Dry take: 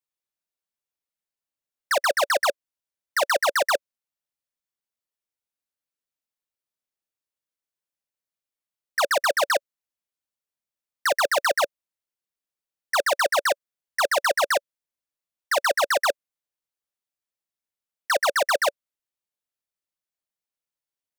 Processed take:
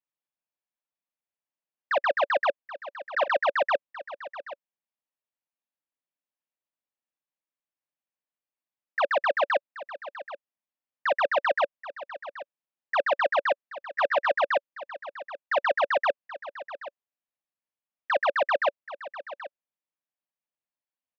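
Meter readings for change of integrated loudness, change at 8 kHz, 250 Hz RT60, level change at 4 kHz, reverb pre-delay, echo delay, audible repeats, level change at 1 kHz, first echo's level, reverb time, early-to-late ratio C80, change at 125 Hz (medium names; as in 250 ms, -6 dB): -3.0 dB, under -30 dB, no reverb, -10.0 dB, no reverb, 779 ms, 1, -1.5 dB, -15.0 dB, no reverb, no reverb, no reading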